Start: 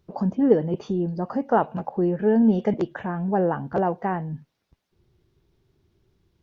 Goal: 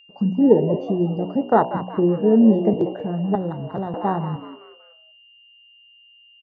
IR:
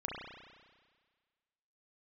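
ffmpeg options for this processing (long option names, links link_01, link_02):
-filter_complex "[0:a]agate=range=-13dB:threshold=-45dB:ratio=16:detection=peak,afwtdn=0.0562,aeval=exprs='val(0)+0.002*sin(2*PI*2800*n/s)':channel_layout=same,bandreject=frequency=61.02:width_type=h:width=4,bandreject=frequency=122.04:width_type=h:width=4,bandreject=frequency=183.06:width_type=h:width=4,bandreject=frequency=244.08:width_type=h:width=4,bandreject=frequency=305.1:width_type=h:width=4,bandreject=frequency=366.12:width_type=h:width=4,bandreject=frequency=427.14:width_type=h:width=4,bandreject=frequency=488.16:width_type=h:width=4,bandreject=frequency=549.18:width_type=h:width=4,bandreject=frequency=610.2:width_type=h:width=4,bandreject=frequency=671.22:width_type=h:width=4,bandreject=frequency=732.24:width_type=h:width=4,bandreject=frequency=793.26:width_type=h:width=4,bandreject=frequency=854.28:width_type=h:width=4,bandreject=frequency=915.3:width_type=h:width=4,bandreject=frequency=976.32:width_type=h:width=4,bandreject=frequency=1037.34:width_type=h:width=4,bandreject=frequency=1098.36:width_type=h:width=4,asplit=5[link_01][link_02][link_03][link_04][link_05];[link_02]adelay=188,afreqshift=120,volume=-13dB[link_06];[link_03]adelay=376,afreqshift=240,volume=-21.6dB[link_07];[link_04]adelay=564,afreqshift=360,volume=-30.3dB[link_08];[link_05]adelay=752,afreqshift=480,volume=-38.9dB[link_09];[link_01][link_06][link_07][link_08][link_09]amix=inputs=5:normalize=0,asettb=1/sr,asplit=3[link_10][link_11][link_12];[link_10]atrim=end=3.354[link_13];[link_11]atrim=start=3.35:end=3.94,asetpts=PTS-STARTPTS,afade=type=in:duration=0.004:curve=qsin,afade=type=out:start_time=0.586:duration=0.004:curve=qsin,acrossover=split=190|3000[link_14][link_15][link_16];[link_15]acompressor=threshold=-38dB:ratio=2.5[link_17];[link_14][link_17][link_16]amix=inputs=3:normalize=0[link_18];[link_12]atrim=start=3.936[link_19];[link_13][link_18]acrossfade=duration=0.004:curve1=hsin:curve2=qsin[link_20];[link_20][link_19]acrossfade=duration=0.004:curve1=qsin:curve2=hsin,volume=4.5dB"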